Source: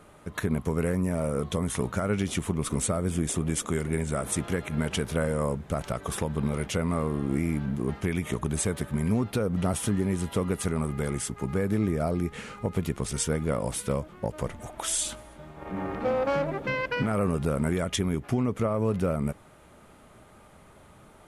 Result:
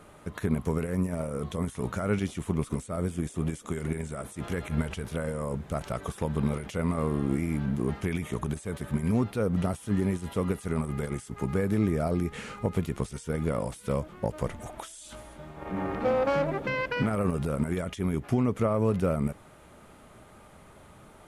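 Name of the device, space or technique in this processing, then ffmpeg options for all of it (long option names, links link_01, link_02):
de-esser from a sidechain: -filter_complex "[0:a]asplit=2[link_01][link_02];[link_02]highpass=6600,apad=whole_len=938228[link_03];[link_01][link_03]sidechaincompress=threshold=-49dB:ratio=6:attack=3:release=49,asettb=1/sr,asplit=3[link_04][link_05][link_06];[link_04]atrim=end=4.384[link_07];[link_05]atrim=start=4.38:end=5.04,asetpts=PTS-STARTPTS,afade=type=in:duration=0.004:curve=qsin,afade=type=out:start_time=0.656:duration=0.004:curve=qsin,asubboost=boost=11:cutoff=110[link_08];[link_06]atrim=start=5.036[link_09];[link_07][link_08]acrossfade=duration=0.004:curve1=hsin:curve2=qsin[link_10];[link_10][link_09]acrossfade=duration=0.004:curve1=qsin:curve2=hsin,volume=1dB"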